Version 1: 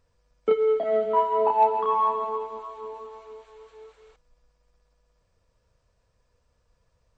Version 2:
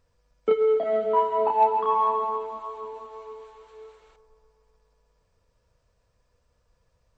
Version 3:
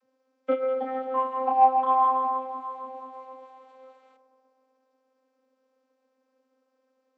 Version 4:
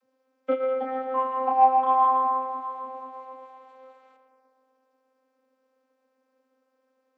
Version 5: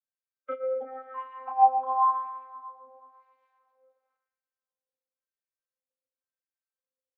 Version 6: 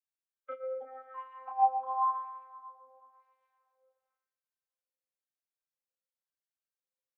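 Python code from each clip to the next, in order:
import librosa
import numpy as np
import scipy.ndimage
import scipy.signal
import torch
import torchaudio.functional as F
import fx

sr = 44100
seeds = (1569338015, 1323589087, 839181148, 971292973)

y1 = fx.echo_wet_bandpass(x, sr, ms=128, feedback_pct=73, hz=670.0, wet_db=-12.5)
y2 = fx.vocoder(y1, sr, bands=32, carrier='saw', carrier_hz=261.0)
y3 = fx.echo_thinned(y2, sr, ms=115, feedback_pct=62, hz=1000.0, wet_db=-11.0)
y4 = fx.bin_expand(y3, sr, power=1.5)
y4 = fx.filter_lfo_bandpass(y4, sr, shape='sine', hz=0.96, low_hz=570.0, high_hz=2200.0, q=1.7)
y5 = scipy.signal.sosfilt(scipy.signal.butter(2, 430.0, 'highpass', fs=sr, output='sos'), y4)
y5 = y5 * 10.0 ** (-6.0 / 20.0)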